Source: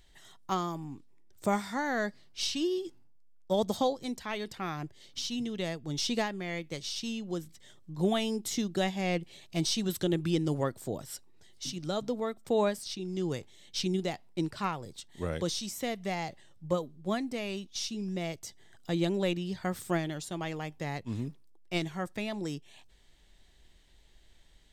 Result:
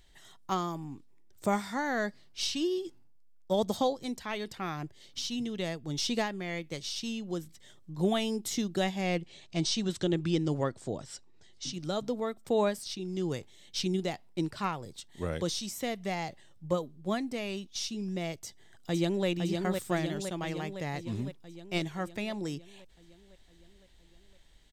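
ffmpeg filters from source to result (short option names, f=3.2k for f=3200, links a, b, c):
-filter_complex "[0:a]asettb=1/sr,asplit=3[a][b][c];[a]atrim=end=9.214[d];[b]atrim=start=9.21:end=11.74,asetpts=PTS-STARTPTS,afade=t=in:d=0.004:c=qsin,afade=t=out:st=2.526:d=0.004:c=qsin,lowpass=f=7.8k:w=0.5412,lowpass=f=7.8k:w=1.3066[e];[c]atrim=start=11.736[f];[d][e]acrossfade=d=0.004:c1=hsin:c2=qsin[g];[g][f]acrossfade=d=0.004:c1=qsin:c2=hsin,asplit=2[h][i];[i]afade=t=in:st=18.37:d=0.01,afade=t=out:st=19.27:d=0.01,aecho=0:1:510|1020|1530|2040|2550|3060|3570|4080|4590|5100:0.630957|0.410122|0.266579|0.173277|0.11263|0.0732094|0.0475861|0.030931|0.0201051|0.0130683[j];[h][j]amix=inputs=2:normalize=0"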